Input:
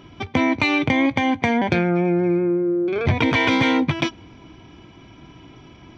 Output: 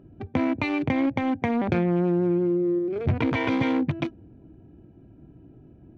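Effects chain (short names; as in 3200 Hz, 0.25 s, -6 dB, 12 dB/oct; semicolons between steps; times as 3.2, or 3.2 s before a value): Wiener smoothing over 41 samples; high shelf 2700 Hz -11 dB; 1.67–2.79 fast leveller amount 50%; gain -3.5 dB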